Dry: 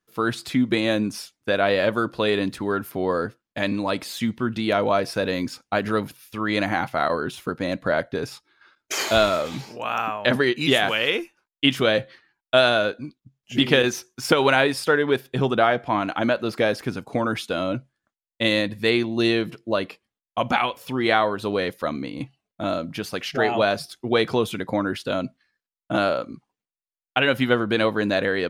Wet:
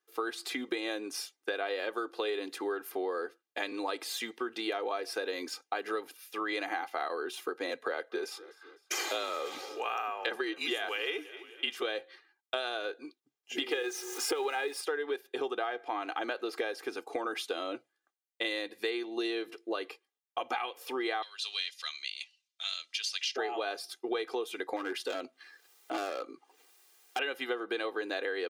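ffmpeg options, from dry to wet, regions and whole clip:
ffmpeg -i in.wav -filter_complex "[0:a]asettb=1/sr,asplit=3[link_01][link_02][link_03];[link_01]atrim=end=7.704[link_04];[link_02]atrim=start=7.7:end=11.82,asetpts=PTS-STARTPTS,afade=type=in:duration=0.004:curve=qsin,afade=type=out:start_time=4.116:duration=0.004:curve=qsin,afreqshift=-38,asplit=4[link_05][link_06][link_07][link_08];[link_06]adelay=254,afreqshift=-40,volume=-23dB[link_09];[link_07]adelay=508,afreqshift=-80,volume=-28.7dB[link_10];[link_08]adelay=762,afreqshift=-120,volume=-34.4dB[link_11];[link_05][link_09][link_10][link_11]amix=inputs=4:normalize=0,atrim=end_sample=181692[link_12];[link_03]atrim=start=11.816[link_13];[link_04][link_12]acrossfade=duration=0.004:curve1=hsin:curve2=qsin[link_14];[link_14][link_13]acrossfade=duration=0.004:curve1=qsin:curve2=hsin,asettb=1/sr,asplit=3[link_15][link_16][link_17];[link_15]atrim=end=13.714[link_18];[link_16]atrim=start=13.71:end=14.81,asetpts=PTS-STARTPTS,afade=type=in:duration=0.004:curve=qsin,afade=type=out:start_time=1.096:duration=0.004:curve=qsin,aeval=exprs='val(0)+0.5*0.0266*sgn(val(0))':channel_layout=same,equalizer=frequency=95:width=1.5:gain=-9,aecho=1:1:2.4:0.59,atrim=end_sample=48510[link_19];[link_17]atrim=start=14.806[link_20];[link_18][link_19]acrossfade=duration=0.004:curve1=hsin:curve2=qsin[link_21];[link_21][link_20]acrossfade=duration=0.004:curve1=qsin:curve2=hsin,asettb=1/sr,asplit=3[link_22][link_23][link_24];[link_22]atrim=end=21.224[link_25];[link_23]atrim=start=21.22:end=23.36,asetpts=PTS-STARTPTS,afade=type=in:duration=0.004:curve=qsin,afade=type=out:start_time=2.136:duration=0.004:curve=qsin,highshelf=frequency=3400:gain=9.5,acontrast=26,asuperpass=centerf=4200:order=4:qfactor=1[link_26];[link_24]atrim=start=23.356[link_27];[link_25][link_26]acrossfade=duration=0.004:curve1=hsin:curve2=qsin[link_28];[link_28][link_27]acrossfade=duration=0.004:curve1=qsin:curve2=hsin,asettb=1/sr,asplit=3[link_29][link_30][link_31];[link_29]atrim=end=24.764[link_32];[link_30]atrim=start=24.76:end=27.19,asetpts=PTS-STARTPTS,afade=type=in:duration=0.004:curve=qsin,afade=type=out:start_time=2.426:duration=0.004:curve=qsin,acompressor=mode=upward:threshold=-31dB:ratio=2.5:attack=3.2:release=140:knee=2.83:detection=peak,volume=20.5dB,asoftclip=hard,volume=-20.5dB[link_33];[link_31]atrim=start=27.186[link_34];[link_32][link_33]acrossfade=duration=0.004:curve1=hsin:curve2=qsin[link_35];[link_35][link_34]acrossfade=duration=0.004:curve1=qsin:curve2=hsin,highpass=frequency=340:width=0.5412,highpass=frequency=340:width=1.3066,aecho=1:1:2.5:0.61,acompressor=threshold=-27dB:ratio=6,volume=-4dB" out.wav

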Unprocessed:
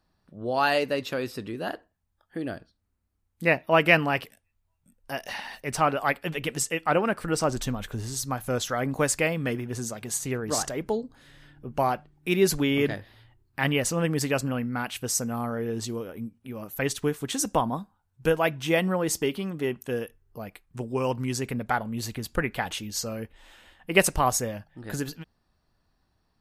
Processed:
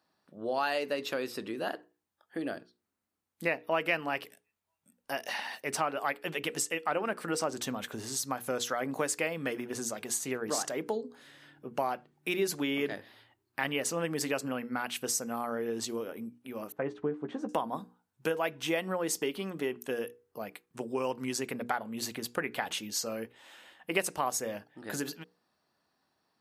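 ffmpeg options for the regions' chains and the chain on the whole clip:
ffmpeg -i in.wav -filter_complex "[0:a]asettb=1/sr,asplit=3[link_01][link_02][link_03];[link_01]atrim=end=16.724[link_04];[link_02]atrim=start=16.72:end=17.49,asetpts=PTS-STARTPTS,afade=type=in:duration=0.004:curve=qsin,afade=type=out:start_time=0.766:duration=0.004:curve=qsin,lowpass=1000,asplit=2[link_05][link_06];[link_06]adelay=13,volume=-8dB[link_07];[link_05][link_07]amix=inputs=2:normalize=0,atrim=end_sample=33957[link_08];[link_03]atrim=start=17.486[link_09];[link_04][link_08]acrossfade=duration=0.004:curve1=hsin:curve2=qsin[link_10];[link_10][link_09]acrossfade=duration=0.004:curve1=qsin:curve2=hsin,highpass=250,bandreject=frequency=60:width_type=h:width=6,bandreject=frequency=120:width_type=h:width=6,bandreject=frequency=180:width_type=h:width=6,bandreject=frequency=240:width_type=h:width=6,bandreject=frequency=300:width_type=h:width=6,bandreject=frequency=360:width_type=h:width=6,bandreject=frequency=420:width_type=h:width=6,bandreject=frequency=480:width_type=h:width=6,acompressor=threshold=-30dB:ratio=2.5" out.wav

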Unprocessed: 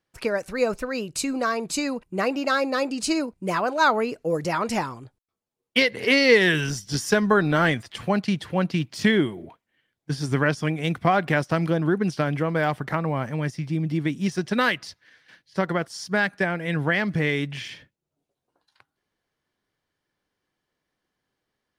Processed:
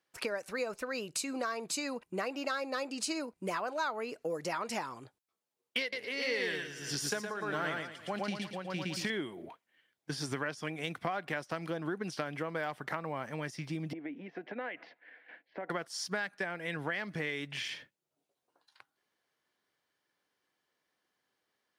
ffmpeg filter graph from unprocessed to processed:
ffmpeg -i in.wav -filter_complex "[0:a]asettb=1/sr,asplit=3[link_01][link_02][link_03];[link_01]atrim=end=5.814[link_04];[link_02]atrim=start=5.81:end=9.1,asetpts=PTS-STARTPTS,afade=type=in:duration=0.004:curve=qsin,afade=type=out:start_time=3.286:duration=0.004:curve=qsin,aecho=1:1:114|228|342|456|570:0.708|0.29|0.119|0.0488|0.02,atrim=end_sample=145089,tremolo=f=1.6:d=0.8[link_05];[link_03]atrim=start=9.096[link_06];[link_04][link_05]acrossfade=duration=0.004:curve1=hsin:curve2=qsin[link_07];[link_07][link_06]acrossfade=duration=0.004:curve1=qsin:curve2=hsin,asettb=1/sr,asplit=3[link_08][link_09][link_10];[link_08]atrim=end=13.934[link_11];[link_09]atrim=start=13.93:end=15.7,asetpts=PTS-STARTPTS,afade=type=in:duration=0.004:curve=qsin,afade=type=out:start_time=1.766:duration=0.004:curve=qsin,acompressor=threshold=-34dB:ratio=10:attack=3.2:release=140:knee=1:detection=peak,highpass=frequency=200:width=0.5412,highpass=frequency=200:width=1.3066,equalizer=frequency=290:width_type=q:width=4:gain=6,equalizer=frequency=490:width_type=q:width=4:gain=6,equalizer=frequency=710:width_type=q:width=4:gain=9,equalizer=frequency=1200:width_type=q:width=4:gain=-6,equalizer=frequency=2200:width_type=q:width=4:gain=3,lowpass=frequency=2400:width=0.5412,lowpass=frequency=2400:width=1.3066[link_12];[link_10]atrim=start=15.696[link_13];[link_11][link_12]acrossfade=duration=0.004:curve1=hsin:curve2=qsin[link_14];[link_14][link_13]acrossfade=duration=0.004:curve1=qsin:curve2=hsin,highpass=frequency=470:poles=1,acompressor=threshold=-34dB:ratio=4" out.wav

